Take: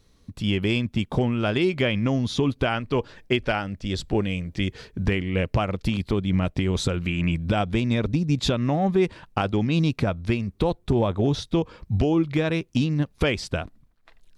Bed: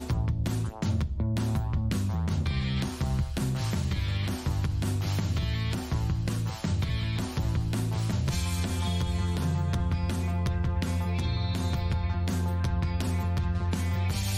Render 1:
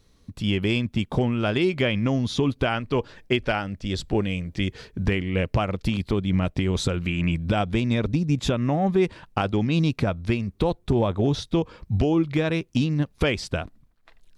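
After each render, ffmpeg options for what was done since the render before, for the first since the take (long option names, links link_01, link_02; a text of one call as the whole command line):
ffmpeg -i in.wav -filter_complex "[0:a]asettb=1/sr,asplit=3[link_01][link_02][link_03];[link_01]atrim=end=8.304[link_04];[link_02]atrim=start=8.3:end=8.87,asetpts=PTS-STARTPTS,afade=type=in:duration=0.004:curve=qsin,afade=type=out:start_time=0.566:duration=0.004:curve=qsin,equalizer=frequency=4300:width_type=o:width=0.54:gain=-8[link_05];[link_03]atrim=start=8.866[link_06];[link_04][link_05]acrossfade=duration=0.004:curve1=hsin:curve2=qsin[link_07];[link_07][link_06]acrossfade=duration=0.004:curve1=qsin:curve2=hsin" out.wav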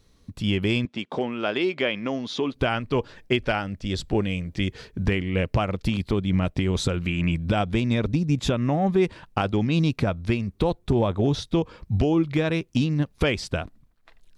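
ffmpeg -i in.wav -filter_complex "[0:a]asettb=1/sr,asplit=3[link_01][link_02][link_03];[link_01]atrim=end=0.854[link_04];[link_02]atrim=start=0.85:end=2.54,asetpts=PTS-STARTPTS,afade=type=in:duration=0.004:curve=qsin,afade=type=out:start_time=1.686:duration=0.004:curve=qsin,highpass=310,lowpass=5400[link_05];[link_03]atrim=start=2.536[link_06];[link_04][link_05]acrossfade=duration=0.004:curve1=hsin:curve2=qsin[link_07];[link_07][link_06]acrossfade=duration=0.004:curve1=qsin:curve2=hsin" out.wav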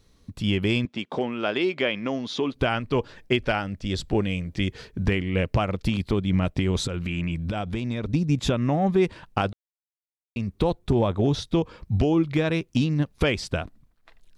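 ffmpeg -i in.wav -filter_complex "[0:a]asettb=1/sr,asplit=3[link_01][link_02][link_03];[link_01]atrim=end=6.844[link_04];[link_02]atrim=start=6.84:end=8.1,asetpts=PTS-STARTPTS,afade=type=in:duration=0.004:curve=qsin,afade=type=out:start_time=1.256:duration=0.004:curve=qsin,acompressor=threshold=-24dB:ratio=4:attack=3.2:release=140:knee=1:detection=peak[link_05];[link_03]atrim=start=8.096[link_06];[link_04][link_05]acrossfade=duration=0.004:curve1=hsin:curve2=qsin[link_07];[link_07][link_06]acrossfade=duration=0.004:curve1=qsin:curve2=hsin,asplit=3[link_08][link_09][link_10];[link_08]atrim=end=9.53,asetpts=PTS-STARTPTS,afade=type=out:start_time=9.526:duration=0.004:curve=hsin[link_11];[link_09]atrim=start=9.53:end=10.36,asetpts=PTS-STARTPTS,volume=0[link_12];[link_10]atrim=start=10.36,asetpts=PTS-STARTPTS,afade=type=in:duration=0.004:curve=hsin[link_13];[link_11][link_12][link_13]concat=n=3:v=0:a=1" out.wav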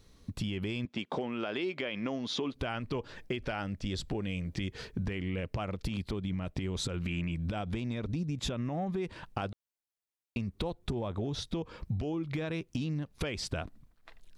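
ffmpeg -i in.wav -af "alimiter=limit=-17.5dB:level=0:latency=1:release=53,acompressor=threshold=-31dB:ratio=6" out.wav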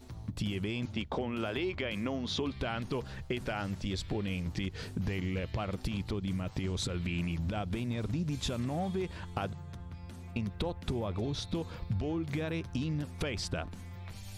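ffmpeg -i in.wav -i bed.wav -filter_complex "[1:a]volume=-17dB[link_01];[0:a][link_01]amix=inputs=2:normalize=0" out.wav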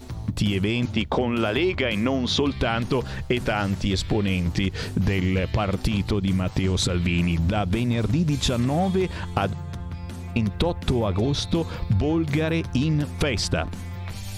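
ffmpeg -i in.wav -af "volume=11.5dB" out.wav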